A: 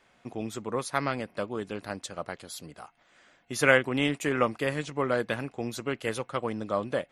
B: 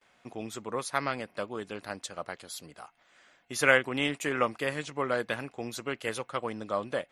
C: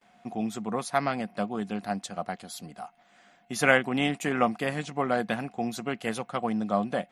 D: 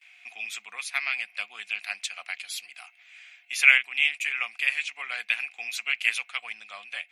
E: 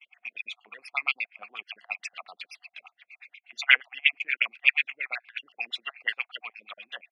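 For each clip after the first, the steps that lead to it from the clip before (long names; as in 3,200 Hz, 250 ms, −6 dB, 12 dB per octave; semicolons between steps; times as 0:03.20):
noise gate with hold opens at −56 dBFS; low-shelf EQ 430 Hz −6.5 dB
hollow resonant body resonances 200/720 Hz, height 15 dB, ringing for 55 ms
speech leveller within 4 dB 0.5 s; high-pass with resonance 2,400 Hz, resonance Q 7.1
time-frequency cells dropped at random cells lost 39%; auto-filter low-pass sine 8.4 Hz 280–3,800 Hz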